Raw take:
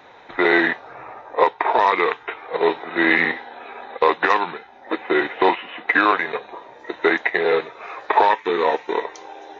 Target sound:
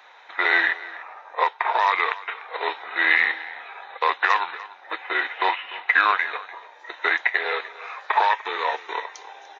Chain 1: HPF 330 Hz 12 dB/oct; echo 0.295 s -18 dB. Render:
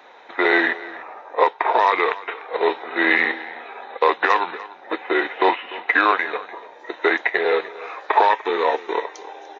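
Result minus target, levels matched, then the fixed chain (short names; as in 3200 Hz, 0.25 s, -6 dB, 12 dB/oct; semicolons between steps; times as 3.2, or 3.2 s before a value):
250 Hz band +13.0 dB
HPF 960 Hz 12 dB/oct; echo 0.295 s -18 dB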